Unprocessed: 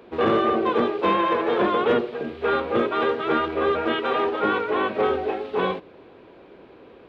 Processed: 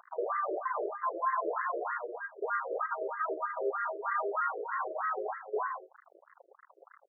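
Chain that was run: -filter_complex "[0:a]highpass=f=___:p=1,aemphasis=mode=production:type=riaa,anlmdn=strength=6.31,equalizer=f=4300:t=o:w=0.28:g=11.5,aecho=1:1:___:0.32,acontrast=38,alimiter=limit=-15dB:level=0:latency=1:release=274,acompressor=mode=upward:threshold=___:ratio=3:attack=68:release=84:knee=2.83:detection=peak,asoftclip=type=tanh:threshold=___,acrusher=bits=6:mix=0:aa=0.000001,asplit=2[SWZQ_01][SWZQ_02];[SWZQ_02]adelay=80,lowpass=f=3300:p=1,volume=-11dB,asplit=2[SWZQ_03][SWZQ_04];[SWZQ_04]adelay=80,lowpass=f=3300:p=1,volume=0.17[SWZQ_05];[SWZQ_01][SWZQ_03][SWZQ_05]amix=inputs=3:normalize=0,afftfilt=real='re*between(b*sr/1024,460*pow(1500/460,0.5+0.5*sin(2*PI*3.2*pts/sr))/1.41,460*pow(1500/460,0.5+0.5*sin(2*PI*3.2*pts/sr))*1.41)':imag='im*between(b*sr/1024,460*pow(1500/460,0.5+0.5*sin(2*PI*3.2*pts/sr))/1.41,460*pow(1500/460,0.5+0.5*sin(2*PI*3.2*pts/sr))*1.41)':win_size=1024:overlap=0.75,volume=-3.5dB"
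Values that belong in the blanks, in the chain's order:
320, 3.1, -38dB, -17dB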